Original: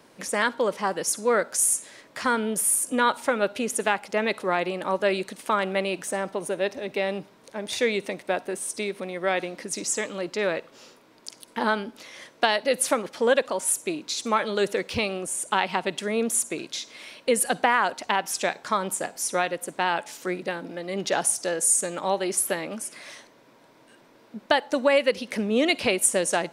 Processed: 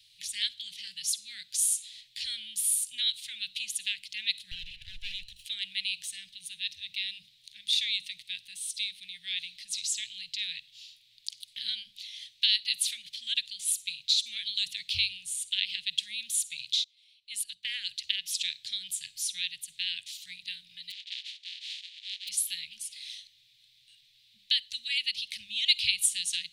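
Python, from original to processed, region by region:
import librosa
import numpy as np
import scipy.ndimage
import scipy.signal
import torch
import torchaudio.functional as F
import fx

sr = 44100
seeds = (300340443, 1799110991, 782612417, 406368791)

y = fx.chain(x, sr, fx.lower_of_two(delay_ms=0.71),
    fx.high_shelf(hz=3900.0, db=-9.5),
    fx.notch(hz=4400.0, q=11.0), at=(4.51, 5.45))
y = fx.chain(y, sr, fx.peak_eq(hz=250.0, db=-4.0, octaves=1.2),
    fx.transient(attack_db=-10, sustain_db=1),
    fx.upward_expand(threshold_db=-37.0, expansion=2.5), at=(16.84, 17.65))
y = fx.spec_flatten(y, sr, power=0.13, at=(20.9, 22.27), fade=0.02)
y = fx.highpass(y, sr, hz=1200.0, slope=12, at=(20.9, 22.27), fade=0.02)
y = fx.spacing_loss(y, sr, db_at_10k=38, at=(20.9, 22.27), fade=0.02)
y = scipy.signal.sosfilt(scipy.signal.cheby2(4, 70, [330.0, 1100.0], 'bandstop', fs=sr, output='sos'), y)
y = fx.band_shelf(y, sr, hz=2600.0, db=15.0, octaves=1.7)
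y = fx.hum_notches(y, sr, base_hz=50, count=4)
y = y * librosa.db_to_amplitude(-4.5)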